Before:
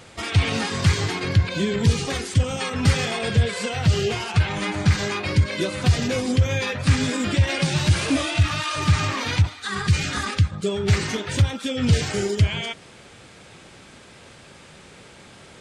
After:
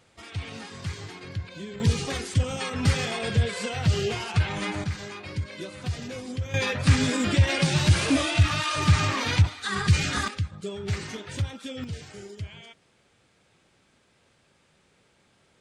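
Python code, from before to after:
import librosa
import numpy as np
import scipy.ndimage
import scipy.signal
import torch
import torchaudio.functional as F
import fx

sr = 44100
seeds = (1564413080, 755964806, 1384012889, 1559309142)

y = fx.gain(x, sr, db=fx.steps((0.0, -15.0), (1.8, -4.0), (4.84, -12.5), (6.54, -1.0), (10.28, -10.0), (11.84, -18.0)))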